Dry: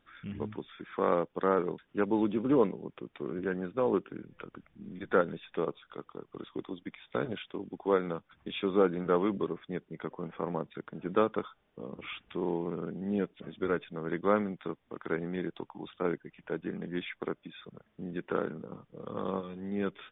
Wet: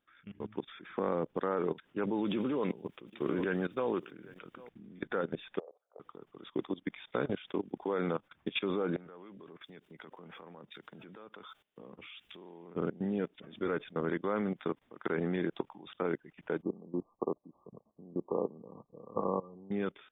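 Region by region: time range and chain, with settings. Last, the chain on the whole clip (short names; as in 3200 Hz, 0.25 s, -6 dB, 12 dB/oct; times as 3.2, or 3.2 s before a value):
0.9–1.38 low shelf 340 Hz +10.5 dB + compressor 4:1, threshold -28 dBFS
2.24–4.69 high shelf 2400 Hz +11 dB + echo 0.797 s -21.5 dB
5.59–6 Butterworth band-pass 610 Hz, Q 2.4 + compressor 2.5:1, threshold -45 dBFS
8.96–12.75 high shelf 2200 Hz +12 dB + compressor 4:1, threshold -43 dBFS + three-band expander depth 70%
16.62–19.71 brick-wall FIR low-pass 1200 Hz + low shelf 350 Hz -4 dB
whole clip: level quantiser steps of 19 dB; low shelf 85 Hz -9.5 dB; AGC gain up to 14 dB; gain -7 dB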